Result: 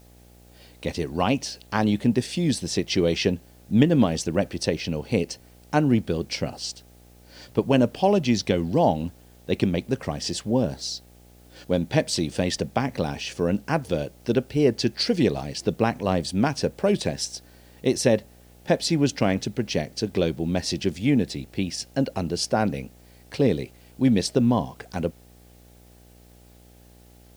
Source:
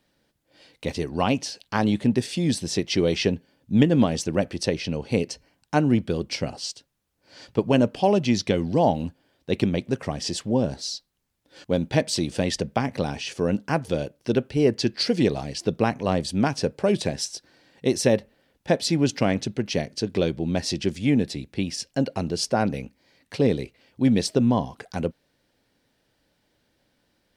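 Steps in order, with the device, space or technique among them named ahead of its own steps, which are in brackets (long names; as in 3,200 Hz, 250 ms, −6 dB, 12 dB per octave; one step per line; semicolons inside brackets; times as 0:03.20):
video cassette with head-switching buzz (hum with harmonics 60 Hz, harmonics 14, −52 dBFS −5 dB per octave; white noise bed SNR 35 dB)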